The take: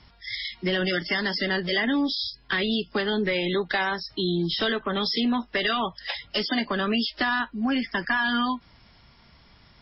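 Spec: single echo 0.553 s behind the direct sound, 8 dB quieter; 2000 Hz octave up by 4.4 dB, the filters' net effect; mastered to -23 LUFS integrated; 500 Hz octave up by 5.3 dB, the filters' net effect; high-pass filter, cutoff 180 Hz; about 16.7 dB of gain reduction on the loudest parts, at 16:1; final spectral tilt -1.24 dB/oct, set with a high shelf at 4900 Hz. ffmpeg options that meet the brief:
-af "highpass=180,equalizer=f=500:t=o:g=7,equalizer=f=2k:t=o:g=4.5,highshelf=f=4.9k:g=3,acompressor=threshold=-34dB:ratio=16,aecho=1:1:553:0.398,volume=14dB"

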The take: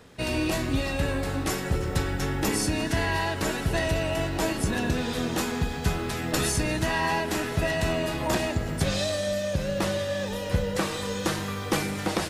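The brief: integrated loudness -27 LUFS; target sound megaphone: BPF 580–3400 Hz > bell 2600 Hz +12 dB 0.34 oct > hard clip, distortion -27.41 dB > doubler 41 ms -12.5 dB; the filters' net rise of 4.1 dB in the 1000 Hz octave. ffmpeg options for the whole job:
-filter_complex "[0:a]highpass=580,lowpass=3.4k,equalizer=f=1k:t=o:g=5.5,equalizer=f=2.6k:t=o:w=0.34:g=12,asoftclip=type=hard:threshold=-16dB,asplit=2[a][b];[b]adelay=41,volume=-12.5dB[c];[a][c]amix=inputs=2:normalize=0"

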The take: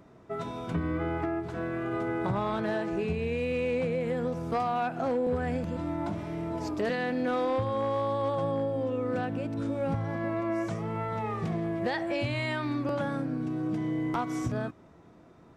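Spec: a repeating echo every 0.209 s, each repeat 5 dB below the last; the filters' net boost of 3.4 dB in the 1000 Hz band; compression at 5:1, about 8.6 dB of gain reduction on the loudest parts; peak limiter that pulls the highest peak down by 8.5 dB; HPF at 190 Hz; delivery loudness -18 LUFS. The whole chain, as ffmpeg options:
-af "highpass=190,equalizer=f=1k:t=o:g=4.5,acompressor=threshold=-33dB:ratio=5,alimiter=level_in=7dB:limit=-24dB:level=0:latency=1,volume=-7dB,aecho=1:1:209|418|627|836|1045|1254|1463:0.562|0.315|0.176|0.0988|0.0553|0.031|0.0173,volume=19.5dB"

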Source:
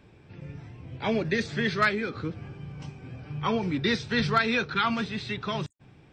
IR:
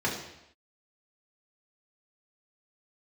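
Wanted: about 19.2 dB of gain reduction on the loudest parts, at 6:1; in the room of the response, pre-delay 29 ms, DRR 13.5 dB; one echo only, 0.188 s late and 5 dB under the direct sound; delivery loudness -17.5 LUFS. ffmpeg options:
-filter_complex "[0:a]acompressor=threshold=-40dB:ratio=6,aecho=1:1:188:0.562,asplit=2[a][b];[1:a]atrim=start_sample=2205,adelay=29[c];[b][c]afir=irnorm=-1:irlink=0,volume=-23.5dB[d];[a][d]amix=inputs=2:normalize=0,volume=24dB"

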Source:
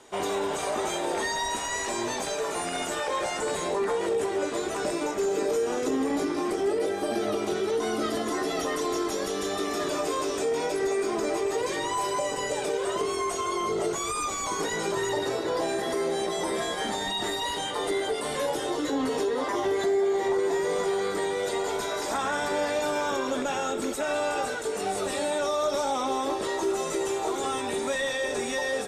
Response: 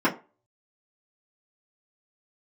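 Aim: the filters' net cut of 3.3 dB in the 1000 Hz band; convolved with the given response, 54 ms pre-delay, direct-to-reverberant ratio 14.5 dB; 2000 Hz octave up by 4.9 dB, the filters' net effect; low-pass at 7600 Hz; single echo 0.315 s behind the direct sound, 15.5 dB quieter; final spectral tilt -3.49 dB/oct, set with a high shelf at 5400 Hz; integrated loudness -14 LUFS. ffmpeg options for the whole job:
-filter_complex "[0:a]lowpass=7.6k,equalizer=f=1k:t=o:g=-6,equalizer=f=2k:t=o:g=8.5,highshelf=f=5.4k:g=-8,aecho=1:1:315:0.168,asplit=2[a][b];[1:a]atrim=start_sample=2205,adelay=54[c];[b][c]afir=irnorm=-1:irlink=0,volume=-30dB[d];[a][d]amix=inputs=2:normalize=0,volume=14dB"

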